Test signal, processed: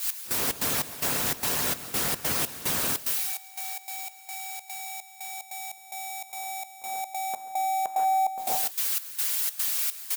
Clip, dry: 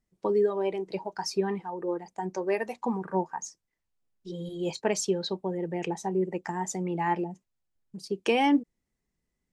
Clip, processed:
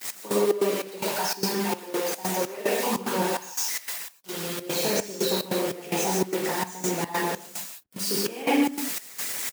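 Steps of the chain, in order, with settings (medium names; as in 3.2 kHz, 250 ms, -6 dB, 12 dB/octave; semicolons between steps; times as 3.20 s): zero-crossing glitches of -20.5 dBFS; dynamic bell 810 Hz, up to -5 dB, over -43 dBFS, Q 5; delay 139 ms -9 dB; in parallel at -1 dB: level held to a coarse grid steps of 18 dB; on the sum: peak limiter -18 dBFS; reverse; upward compressor, threshold -28 dBFS; reverse; gated-style reverb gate 200 ms flat, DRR -7 dB; trance gate "x..xx.xx..xxx.xx" 147 bpm -12 dB; high-pass 130 Hz 12 dB/octave; treble shelf 3.1 kHz -11 dB; harmonic-percussive split harmonic -9 dB; trim +5 dB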